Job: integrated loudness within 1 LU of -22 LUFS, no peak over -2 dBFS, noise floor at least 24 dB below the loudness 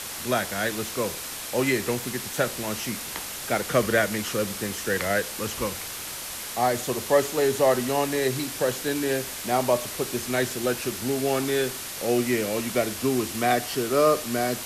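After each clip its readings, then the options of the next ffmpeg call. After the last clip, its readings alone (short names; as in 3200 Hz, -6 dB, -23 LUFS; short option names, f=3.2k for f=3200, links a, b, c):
noise floor -35 dBFS; noise floor target -50 dBFS; loudness -25.5 LUFS; peak -7.5 dBFS; loudness target -22.0 LUFS
-> -af "afftdn=nr=15:nf=-35"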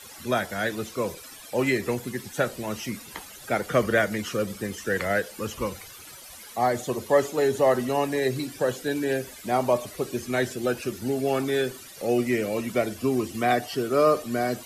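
noise floor -45 dBFS; noise floor target -51 dBFS
-> -af "afftdn=nr=6:nf=-45"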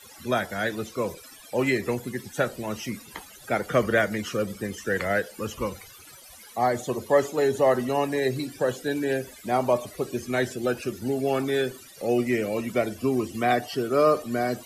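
noise floor -48 dBFS; noise floor target -51 dBFS
-> -af "afftdn=nr=6:nf=-48"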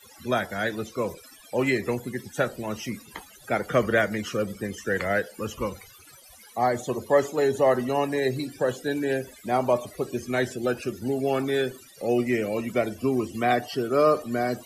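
noise floor -51 dBFS; loudness -26.5 LUFS; peak -7.5 dBFS; loudness target -22.0 LUFS
-> -af "volume=4.5dB"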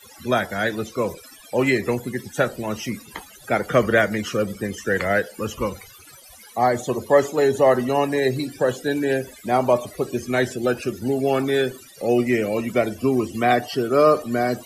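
loudness -22.0 LUFS; peak -3.0 dBFS; noise floor -46 dBFS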